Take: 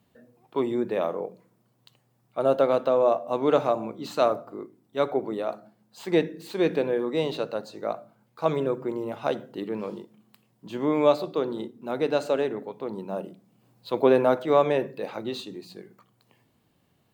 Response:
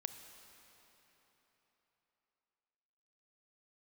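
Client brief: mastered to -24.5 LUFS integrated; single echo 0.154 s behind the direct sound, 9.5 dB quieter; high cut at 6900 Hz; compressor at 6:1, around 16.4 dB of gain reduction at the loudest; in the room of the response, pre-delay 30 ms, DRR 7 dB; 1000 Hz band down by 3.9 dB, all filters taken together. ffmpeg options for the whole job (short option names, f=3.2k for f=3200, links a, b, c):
-filter_complex "[0:a]lowpass=6.9k,equalizer=f=1k:t=o:g=-5.5,acompressor=threshold=-34dB:ratio=6,aecho=1:1:154:0.335,asplit=2[a][b];[1:a]atrim=start_sample=2205,adelay=30[c];[b][c]afir=irnorm=-1:irlink=0,volume=-5dB[d];[a][d]amix=inputs=2:normalize=0,volume=13.5dB"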